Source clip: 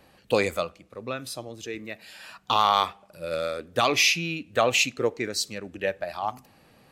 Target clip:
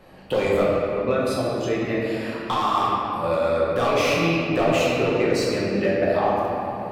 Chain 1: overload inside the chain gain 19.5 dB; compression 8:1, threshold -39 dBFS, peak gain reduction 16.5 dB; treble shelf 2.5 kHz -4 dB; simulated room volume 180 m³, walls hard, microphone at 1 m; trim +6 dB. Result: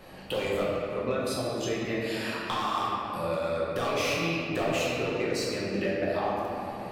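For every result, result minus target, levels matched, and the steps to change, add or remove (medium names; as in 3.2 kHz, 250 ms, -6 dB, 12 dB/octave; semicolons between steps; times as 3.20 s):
compression: peak gain reduction +9 dB; 4 kHz band +4.0 dB
change: compression 8:1, threshold -28.5 dBFS, peak gain reduction 7.5 dB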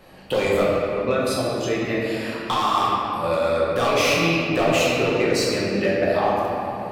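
4 kHz band +3.5 dB
change: treble shelf 2.5 kHz -10.5 dB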